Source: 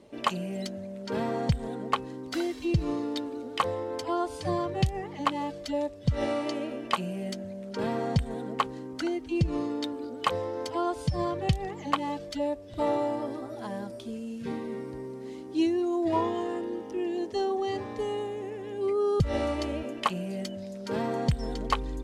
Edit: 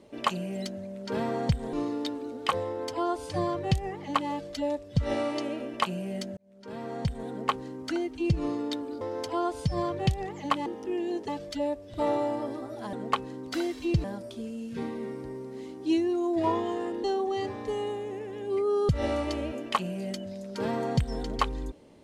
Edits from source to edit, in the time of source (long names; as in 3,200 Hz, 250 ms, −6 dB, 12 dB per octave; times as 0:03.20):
0:01.73–0:02.84: move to 0:13.73
0:07.48–0:08.56: fade in
0:10.12–0:10.43: remove
0:16.73–0:17.35: move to 0:12.08